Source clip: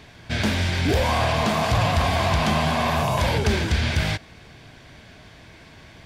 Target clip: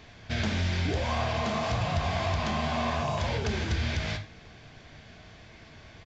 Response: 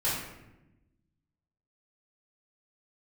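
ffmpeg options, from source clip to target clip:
-filter_complex "[0:a]acompressor=threshold=-22dB:ratio=6,asplit=2[a][b];[1:a]atrim=start_sample=2205,atrim=end_sample=6174,asetrate=57330,aresample=44100[c];[b][c]afir=irnorm=-1:irlink=0,volume=-11dB[d];[a][d]amix=inputs=2:normalize=0,aresample=16000,aresample=44100,volume=-6dB"

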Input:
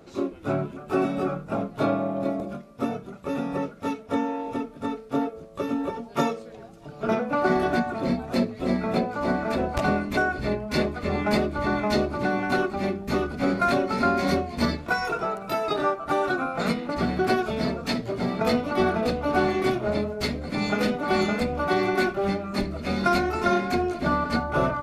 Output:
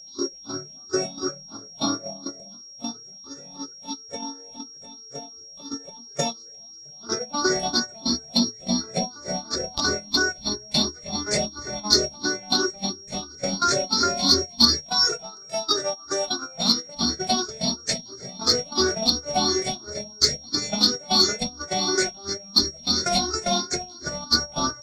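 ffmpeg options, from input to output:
-filter_complex "[0:a]afftfilt=real='re*pow(10,17/40*sin(2*PI*(0.5*log(max(b,1)*sr/1024/100)/log(2)-(2.9)*(pts-256)/sr)))':imag='im*pow(10,17/40*sin(2*PI*(0.5*log(max(b,1)*sr/1024/100)/log(2)-(2.9)*(pts-256)/sr)))':win_size=1024:overlap=0.75,acrossover=split=5600[a][b];[a]aexciter=amount=13.7:drive=8.5:freq=4.1k[c];[b]acompressor=threshold=-59dB:ratio=6[d];[c][d]amix=inputs=2:normalize=0,aeval=exprs='val(0)+0.0891*sin(2*PI*5600*n/s)':c=same,agate=range=-15dB:threshold=-18dB:ratio=16:detection=peak,volume=-5.5dB"

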